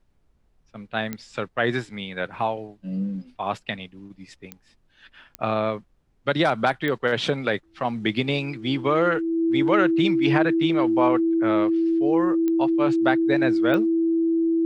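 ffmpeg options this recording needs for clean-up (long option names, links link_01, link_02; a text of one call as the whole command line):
ffmpeg -i in.wav -af "adeclick=threshold=4,bandreject=frequency=330:width=30,agate=range=-21dB:threshold=-53dB" out.wav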